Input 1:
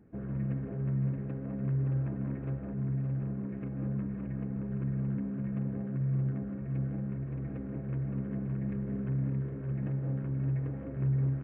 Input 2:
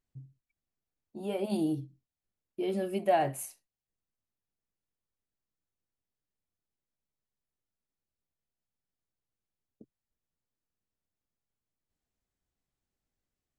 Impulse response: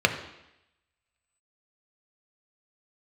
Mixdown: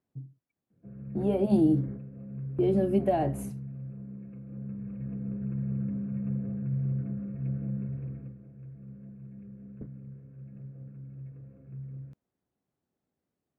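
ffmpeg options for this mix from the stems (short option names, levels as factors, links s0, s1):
-filter_complex "[0:a]lowshelf=f=410:g=8,adelay=700,afade=t=in:st=4.52:d=0.79:silence=0.421697,afade=t=out:st=7.99:d=0.35:silence=0.223872,asplit=2[s0][s1];[s1]volume=0.0708[s2];[1:a]highpass=150,tiltshelf=f=1500:g=9.5,volume=1.12,asplit=2[s3][s4];[s4]apad=whole_len=535042[s5];[s0][s5]sidechaingate=range=0.0224:threshold=0.00562:ratio=16:detection=peak[s6];[2:a]atrim=start_sample=2205[s7];[s2][s7]afir=irnorm=-1:irlink=0[s8];[s6][s3][s8]amix=inputs=3:normalize=0,acrossover=split=300|3000[s9][s10][s11];[s10]acompressor=threshold=0.0398:ratio=3[s12];[s9][s12][s11]amix=inputs=3:normalize=0"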